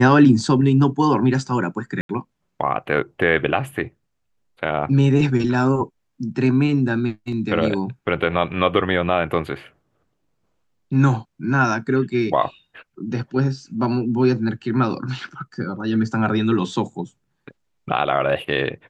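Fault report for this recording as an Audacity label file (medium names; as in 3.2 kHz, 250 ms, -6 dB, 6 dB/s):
2.010000	2.090000	dropout 82 ms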